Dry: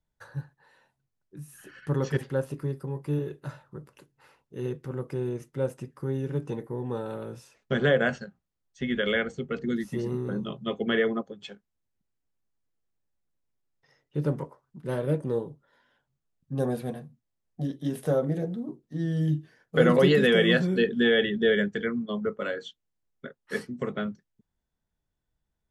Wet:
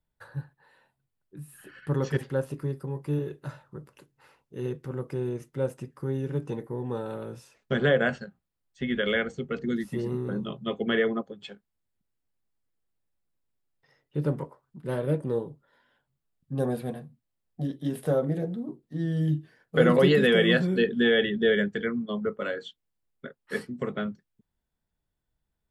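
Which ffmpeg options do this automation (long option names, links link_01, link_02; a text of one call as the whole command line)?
ffmpeg -i in.wav -af "asetnsamples=nb_out_samples=441:pad=0,asendcmd='1.91 equalizer g -1.5;7.76 equalizer g -8;9.13 equalizer g -1;9.83 equalizer g -7',equalizer=frequency=6100:width_type=o:width=0.32:gain=-13" out.wav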